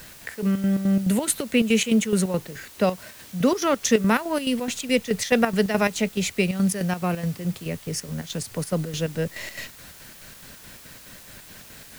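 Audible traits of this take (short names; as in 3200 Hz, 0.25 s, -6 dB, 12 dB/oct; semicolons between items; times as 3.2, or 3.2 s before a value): chopped level 4.7 Hz, depth 65%, duty 60%; a quantiser's noise floor 8-bit, dither triangular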